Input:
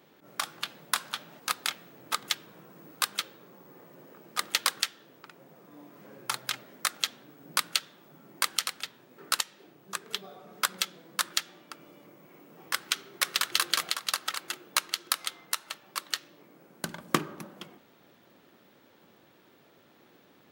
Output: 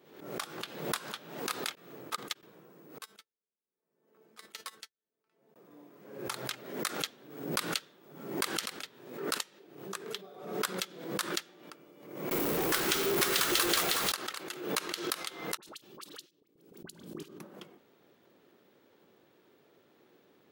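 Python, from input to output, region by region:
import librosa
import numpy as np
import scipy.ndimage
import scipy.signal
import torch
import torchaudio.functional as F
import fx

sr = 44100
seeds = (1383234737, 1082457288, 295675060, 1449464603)

y = fx.chain(x, sr, fx.peak_eq(hz=1200.0, db=3.5, octaves=0.28),
    fx.upward_expand(threshold_db=-45.0, expansion=2.5), at=(1.75, 2.43))
y = fx.chain(y, sr, fx.comb_fb(f0_hz=220.0, decay_s=0.16, harmonics='all', damping=0.0, mix_pct=80),
    fx.upward_expand(threshold_db=-56.0, expansion=2.5), at=(2.98, 5.56))
y = fx.chain(y, sr, fx.zero_step(step_db=-21.0),
    fx.high_shelf(hz=9200.0, db=4.0), at=(12.31, 14.12))
y = fx.chain(y, sr, fx.band_shelf(hz=1100.0, db=-10.0, octaves=2.4),
    fx.level_steps(step_db=19),
    fx.dispersion(late='highs', ms=58.0, hz=1400.0), at=(15.57, 17.4))
y = fx.peak_eq(y, sr, hz=410.0, db=7.0, octaves=0.71)
y = fx.pre_swell(y, sr, db_per_s=73.0)
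y = y * librosa.db_to_amplitude(-7.0)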